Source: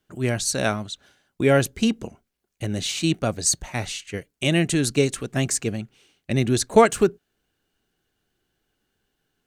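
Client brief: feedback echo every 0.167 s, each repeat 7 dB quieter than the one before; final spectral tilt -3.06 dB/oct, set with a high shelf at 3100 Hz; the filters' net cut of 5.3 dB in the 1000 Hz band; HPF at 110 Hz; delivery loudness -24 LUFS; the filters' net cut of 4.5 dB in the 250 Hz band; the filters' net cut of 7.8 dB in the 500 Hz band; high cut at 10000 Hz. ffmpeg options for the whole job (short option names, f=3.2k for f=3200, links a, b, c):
-af "highpass=110,lowpass=10k,equalizer=f=250:t=o:g=-3,equalizer=f=500:t=o:g=-8,equalizer=f=1k:t=o:g=-4.5,highshelf=f=3.1k:g=3.5,aecho=1:1:167|334|501|668|835:0.447|0.201|0.0905|0.0407|0.0183,volume=0.5dB"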